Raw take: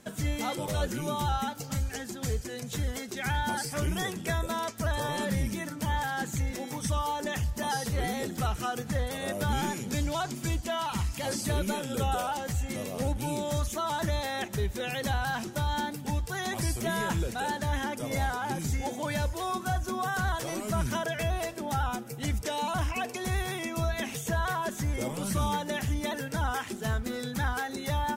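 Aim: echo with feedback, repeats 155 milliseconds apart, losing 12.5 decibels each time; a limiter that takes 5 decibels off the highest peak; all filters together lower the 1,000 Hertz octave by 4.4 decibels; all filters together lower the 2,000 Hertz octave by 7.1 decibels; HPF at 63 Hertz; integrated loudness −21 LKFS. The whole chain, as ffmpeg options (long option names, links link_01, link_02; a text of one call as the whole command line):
ffmpeg -i in.wav -af "highpass=63,equalizer=frequency=1000:width_type=o:gain=-4,equalizer=frequency=2000:width_type=o:gain=-8,alimiter=limit=-24dB:level=0:latency=1,aecho=1:1:155|310|465:0.237|0.0569|0.0137,volume=13.5dB" out.wav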